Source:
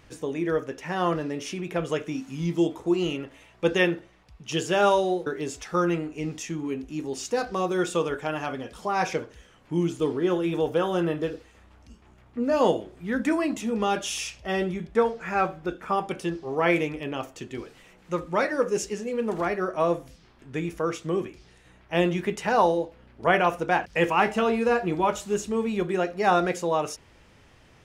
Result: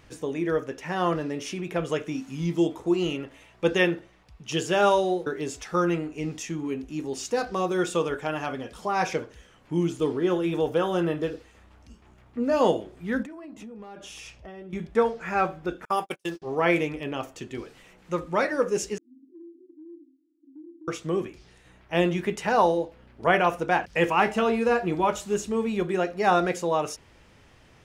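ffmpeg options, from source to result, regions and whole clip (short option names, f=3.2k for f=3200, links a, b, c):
-filter_complex "[0:a]asettb=1/sr,asplit=3[a][b][c];[a]atrim=end=13.234[d];[b]atrim=start=13.23:end=14.73,asetpts=PTS-STARTPTS,afade=t=in:d=0.004:c=qsin,afade=t=out:st=1.496:d=0.004:c=qsin,highshelf=f=2.2k:g=-11.5,asoftclip=type=hard:threshold=-17.5dB,acompressor=threshold=-38dB:ratio=16:attack=3.2:release=140:knee=1:detection=peak[e];[c]atrim=start=14.726[f];[d][e]acrossfade=d=0.004:c1=hsin:c2=qsin[g];[g][f]acrossfade=d=0.004:c1=qsin:c2=hsin,asettb=1/sr,asplit=3[h][i][j];[h]atrim=end=15.854[k];[i]atrim=start=15.85:end=16.42,asetpts=PTS-STARTPTS,afade=t=in:d=0.004:c=qsin,afade=t=out:st=0.566:d=0.004:c=qsin,agate=range=-40dB:threshold=-33dB:ratio=16:release=100:detection=peak,aemphasis=mode=production:type=bsi[l];[j]atrim=start=16.416[m];[k][l]acrossfade=d=0.004:c1=hsin:c2=qsin[n];[n][m]acrossfade=d=0.004:c1=qsin:c2=hsin,asettb=1/sr,asplit=3[o][p][q];[o]atrim=end=18.984[r];[p]atrim=start=18.98:end=20.88,asetpts=PTS-STARTPTS,afade=t=in:d=0.004:c=qsin,afade=t=out:st=1.896:d=0.004:c=qsin,asuperpass=centerf=300:order=12:qfactor=3.8,acompressor=threshold=-44dB:ratio=4:attack=3.2:release=140:knee=1:detection=peak[s];[q]atrim=start=20.876[t];[r][s]acrossfade=d=0.004:c1=hsin:c2=qsin[u];[u][t]acrossfade=d=0.004:c1=qsin:c2=hsin"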